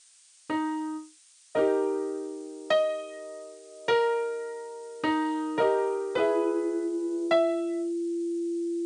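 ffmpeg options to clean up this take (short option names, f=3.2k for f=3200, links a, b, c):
-af "bandreject=f=340:w=30,afftdn=nr=16:nf=-57"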